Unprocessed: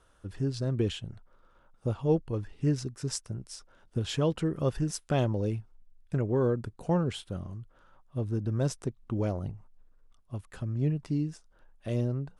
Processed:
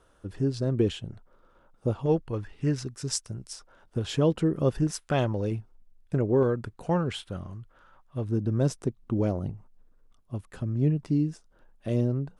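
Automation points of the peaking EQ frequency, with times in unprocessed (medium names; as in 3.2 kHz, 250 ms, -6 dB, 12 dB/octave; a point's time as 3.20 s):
peaking EQ +5.5 dB 2.4 oct
370 Hz
from 2.06 s 1.6 kHz
from 2.91 s 6.2 kHz
from 3.53 s 870 Hz
from 4.07 s 300 Hz
from 4.87 s 1.5 kHz
from 5.51 s 390 Hz
from 6.43 s 1.7 kHz
from 8.29 s 270 Hz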